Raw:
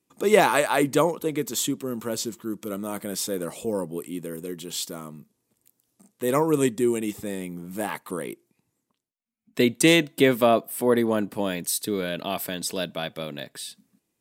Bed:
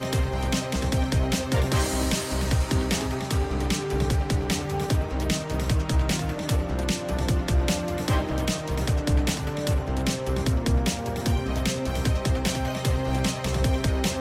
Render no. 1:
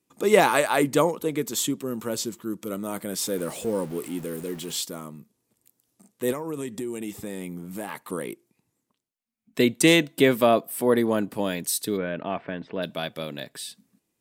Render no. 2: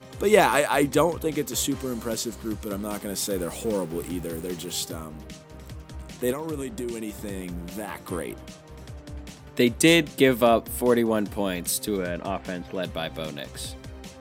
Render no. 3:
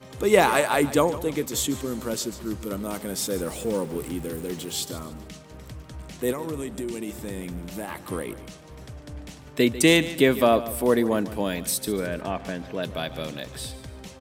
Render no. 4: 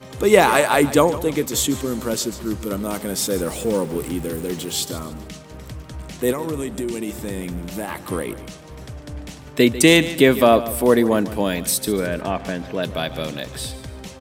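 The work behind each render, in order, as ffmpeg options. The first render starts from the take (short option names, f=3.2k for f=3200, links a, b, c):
-filter_complex "[0:a]asettb=1/sr,asplit=3[a][b][c];[a]atrim=end=3.224[d];[b]atrim=start=3.22:end=4.81,asetpts=PTS-STARTPTS,afade=t=in:d=0.004:c=qsin,afade=t=out:st=1.586:d=0.004:c=qsin,aeval=exprs='val(0)+0.5*0.0112*sgn(val(0))':c=same[e];[c]atrim=start=4.806[f];[d][e]acrossfade=d=0.004:c1=hsin:c2=qsin[g];[g][f]acrossfade=d=0.004:c1=qsin:c2=hsin,asettb=1/sr,asplit=3[h][i][j];[h]atrim=end=6.324[k];[i]atrim=start=6.32:end=8.12,asetpts=PTS-STARTPTS,afade=t=in:d=0.004:c=qsin,afade=t=out:st=1.796:d=0.004:c=qsin,acompressor=threshold=-28dB:ratio=6:attack=3.2:release=140:knee=1:detection=peak[l];[j]atrim=start=8.116[m];[k][l]acrossfade=d=0.004:c1=hsin:c2=qsin[n];[n][m]acrossfade=d=0.004:c1=qsin:c2=hsin,asplit=3[o][p][q];[o]afade=t=out:st=11.96:d=0.02[r];[p]lowpass=f=2.3k:w=0.5412,lowpass=f=2.3k:w=1.3066,afade=t=in:st=11.96:d=0.02,afade=t=out:st=12.82:d=0.02[s];[q]afade=t=in:st=12.82:d=0.02[t];[r][s][t]amix=inputs=3:normalize=0"
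-filter_complex "[1:a]volume=-16.5dB[a];[0:a][a]amix=inputs=2:normalize=0"
-af "aecho=1:1:146|292|438:0.168|0.0621|0.023"
-af "volume=5.5dB,alimiter=limit=-1dB:level=0:latency=1"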